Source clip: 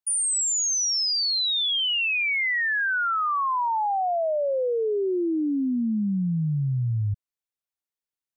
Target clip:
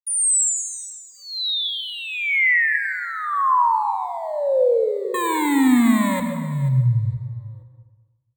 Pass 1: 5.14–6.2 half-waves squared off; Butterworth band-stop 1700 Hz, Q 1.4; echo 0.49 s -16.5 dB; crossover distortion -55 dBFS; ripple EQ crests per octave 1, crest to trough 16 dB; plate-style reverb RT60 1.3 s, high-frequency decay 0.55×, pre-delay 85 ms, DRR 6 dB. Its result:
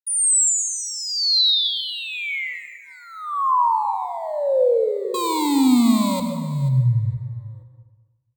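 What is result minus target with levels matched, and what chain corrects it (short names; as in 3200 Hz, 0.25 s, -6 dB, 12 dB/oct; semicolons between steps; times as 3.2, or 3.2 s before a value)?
2000 Hz band -11.0 dB
5.14–6.2 half-waves squared off; Butterworth band-stop 5100 Hz, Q 1.4; echo 0.49 s -16.5 dB; crossover distortion -55 dBFS; ripple EQ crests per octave 1, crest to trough 16 dB; plate-style reverb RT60 1.3 s, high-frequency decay 0.55×, pre-delay 85 ms, DRR 6 dB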